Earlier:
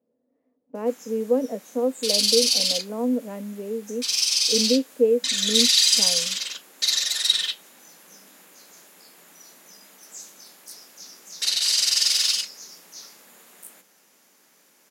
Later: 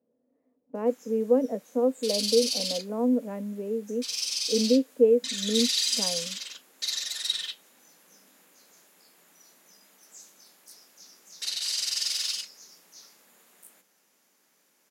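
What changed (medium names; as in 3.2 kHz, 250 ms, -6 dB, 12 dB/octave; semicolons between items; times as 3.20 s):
speech: add distance through air 250 m; background -8.5 dB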